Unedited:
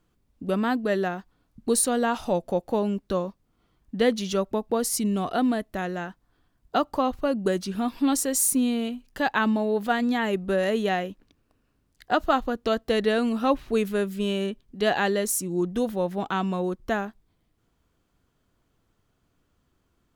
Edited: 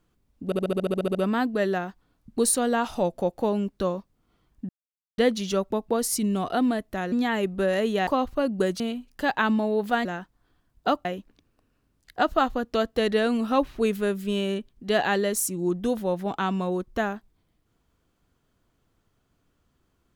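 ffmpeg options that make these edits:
-filter_complex "[0:a]asplit=17[a][b][c][d][e][f][g][h][i][j][k][l][m][n][o][p][q];[a]atrim=end=0.522[r];[b]atrim=start=0.448:end=0.522[s];[c]atrim=start=0.448:end=0.522[t];[d]atrim=start=0.448:end=0.522[u];[e]atrim=start=0.448:end=0.522[v];[f]atrim=start=0.448:end=0.522[w];[g]atrim=start=0.448:end=0.522[x];[h]atrim=start=0.448:end=0.522[y];[i]atrim=start=0.448:end=0.522[z];[j]atrim=start=0.448:end=0.522[aa];[k]atrim=start=0.448:end=3.99,asetpts=PTS-STARTPTS,afade=t=out:st=3.538:d=0.004:c=hsin,apad=pad_dur=0.49[ab];[l]atrim=start=3.99:end=5.932,asetpts=PTS-STARTPTS,afade=t=in:d=0.004:c=hsin[ac];[m]atrim=start=10.018:end=10.972[ad];[n]atrim=start=6.928:end=7.662[ae];[o]atrim=start=8.768:end=10.022[af];[p]atrim=start=5.928:end=6.932[ag];[q]atrim=start=10.968[ah];[r][s]acrossfade=d=0.004:c1=hsin:c2=hsin[ai];[ai][t]acrossfade=d=0.004:c1=hsin:c2=hsin[aj];[aj][u]acrossfade=d=0.004:c1=hsin:c2=hsin[ak];[ak][v]acrossfade=d=0.004:c1=hsin:c2=hsin[al];[al][w]acrossfade=d=0.004:c1=hsin:c2=hsin[am];[am][x]acrossfade=d=0.004:c1=hsin:c2=hsin[an];[an][y]acrossfade=d=0.004:c1=hsin:c2=hsin[ao];[ao][z]acrossfade=d=0.004:c1=hsin:c2=hsin[ap];[ap][aa]acrossfade=d=0.004:c1=hsin:c2=hsin[aq];[ab][ac]concat=n=2:v=0:a=1[ar];[aq][ar]acrossfade=d=0.004:c1=hsin:c2=hsin[as];[as][ad]acrossfade=d=0.004:c1=hsin:c2=hsin[at];[at][ae]acrossfade=d=0.004:c1=hsin:c2=hsin[au];[au][af]acrossfade=d=0.004:c1=hsin:c2=hsin[av];[av][ag]acrossfade=d=0.004:c1=hsin:c2=hsin[aw];[aw][ah]acrossfade=d=0.004:c1=hsin:c2=hsin"

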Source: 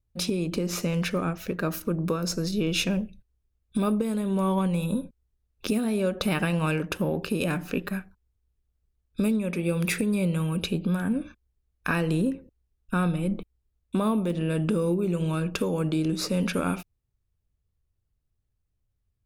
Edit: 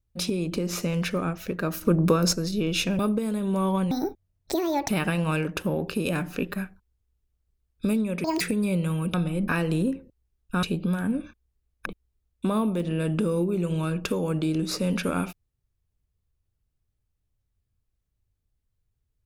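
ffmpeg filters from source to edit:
-filter_complex "[0:a]asplit=12[a][b][c][d][e][f][g][h][i][j][k][l];[a]atrim=end=1.822[m];[b]atrim=start=1.818:end=2.332,asetpts=PTS-STARTPTS,volume=6.5dB[n];[c]atrim=start=2.328:end=2.992[o];[d]atrim=start=3.818:end=4.744[p];[e]atrim=start=4.74:end=6.24,asetpts=PTS-STARTPTS,asetrate=67473,aresample=44100,atrim=end_sample=43235,asetpts=PTS-STARTPTS[q];[f]atrim=start=6.236:end=9.594[r];[g]atrim=start=9.59:end=9.91,asetpts=PTS-STARTPTS,asetrate=83790,aresample=44100,atrim=end_sample=7427,asetpts=PTS-STARTPTS[s];[h]atrim=start=9.906:end=10.642[t];[i]atrim=start=13.018:end=13.362[u];[j]atrim=start=11.868:end=13.022[v];[k]atrim=start=10.638:end=11.872[w];[l]atrim=start=13.358[x];[m][n]acrossfade=d=0.004:c1=hsin:c2=hsin[y];[y][o]acrossfade=d=0.004:c1=hsin:c2=hsin[z];[z][p]acrossfade=d=0.004:c1=hsin:c2=hsin[aa];[aa][q]acrossfade=d=0.004:c1=hsin:c2=hsin[ab];[ab][r]acrossfade=d=0.004:c1=hsin:c2=hsin[ac];[ac][s]acrossfade=d=0.004:c1=hsin:c2=hsin[ad];[ad][t]acrossfade=d=0.004:c1=hsin:c2=hsin[ae];[ae][u]acrossfade=d=0.004:c1=hsin:c2=hsin[af];[af][v]acrossfade=d=0.004:c1=hsin:c2=hsin[ag];[ag][w]acrossfade=d=0.004:c1=hsin:c2=hsin[ah];[ah][x]acrossfade=d=0.004:c1=hsin:c2=hsin"

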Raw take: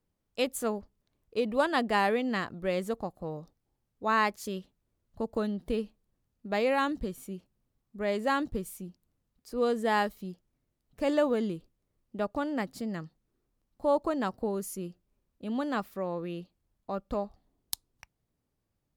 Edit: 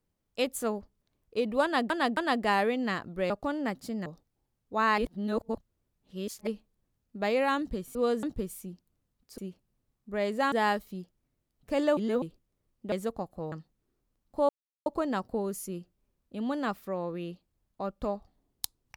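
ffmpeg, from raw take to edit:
-filter_complex "[0:a]asplit=16[a][b][c][d][e][f][g][h][i][j][k][l][m][n][o][p];[a]atrim=end=1.902[q];[b]atrim=start=1.628:end=1.902[r];[c]atrim=start=1.628:end=2.762[s];[d]atrim=start=12.218:end=12.982[t];[e]atrim=start=3.358:end=4.282[u];[f]atrim=start=4.278:end=5.772,asetpts=PTS-STARTPTS,areverse[v];[g]atrim=start=5.768:end=7.252[w];[h]atrim=start=9.538:end=9.822[x];[i]atrim=start=8.388:end=9.542[y];[j]atrim=start=7.248:end=8.392[z];[k]atrim=start=9.818:end=11.272[aa];[l]atrim=start=11.268:end=11.522,asetpts=PTS-STARTPTS,areverse[ab];[m]atrim=start=11.518:end=12.222[ac];[n]atrim=start=2.758:end=3.362[ad];[o]atrim=start=12.978:end=13.95,asetpts=PTS-STARTPTS,afade=t=out:st=0.968:d=0.004:c=hsin,apad=pad_dur=0.37[ae];[p]atrim=start=13.95,asetpts=PTS-STARTPTS,afade=t=in:d=0.004:c=hsin[af];[q][r]acrossfade=d=0.004:c1=hsin:c2=hsin[ag];[ag][s]acrossfade=d=0.004:c1=hsin:c2=hsin[ah];[ah][t]acrossfade=d=0.004:c1=hsin:c2=hsin[ai];[ai][u]acrossfade=d=0.004:c1=hsin:c2=hsin[aj];[aj][v]acrossfade=d=0.004:c1=hsin:c2=hsin[ak];[ak][w]acrossfade=d=0.004:c1=hsin:c2=hsin[al];[al][x]acrossfade=d=0.004:c1=hsin:c2=hsin[am];[am][y]acrossfade=d=0.004:c1=hsin:c2=hsin[an];[an][z]acrossfade=d=0.004:c1=hsin:c2=hsin[ao];[ao][aa]acrossfade=d=0.004:c1=hsin:c2=hsin[ap];[ap][ab]acrossfade=d=0.004:c1=hsin:c2=hsin[aq];[aq][ac]acrossfade=d=0.004:c1=hsin:c2=hsin[ar];[ar][ad]acrossfade=d=0.004:c1=hsin:c2=hsin[as];[ae][af]concat=n=2:v=0:a=1[at];[as][at]acrossfade=d=0.004:c1=hsin:c2=hsin"

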